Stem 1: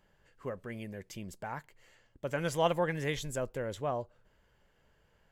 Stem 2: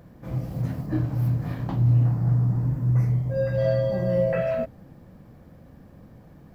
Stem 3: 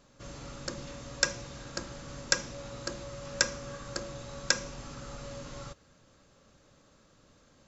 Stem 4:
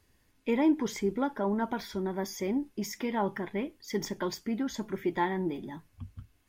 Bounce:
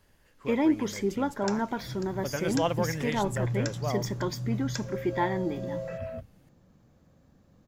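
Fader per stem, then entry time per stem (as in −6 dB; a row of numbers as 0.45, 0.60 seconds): +0.5, −12.5, −12.0, +1.0 decibels; 0.00, 1.55, 0.25, 0.00 seconds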